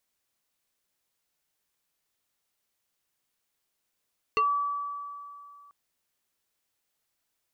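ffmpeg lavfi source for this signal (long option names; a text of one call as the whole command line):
ffmpeg -f lavfi -i "aevalsrc='0.1*pow(10,-3*t/2.55)*sin(2*PI*1150*t+1.4*pow(10,-3*t/0.15)*sin(2*PI*1.38*1150*t))':duration=1.34:sample_rate=44100" out.wav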